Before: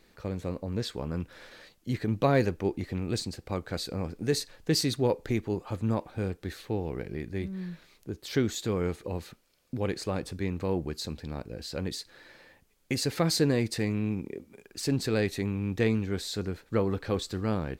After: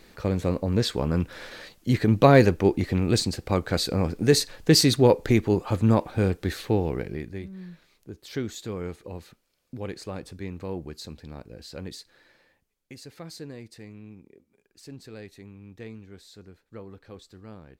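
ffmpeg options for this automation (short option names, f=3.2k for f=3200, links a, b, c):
-af "volume=8.5dB,afade=t=out:st=6.69:d=0.73:silence=0.237137,afade=t=out:st=11.9:d=1.06:silence=0.281838"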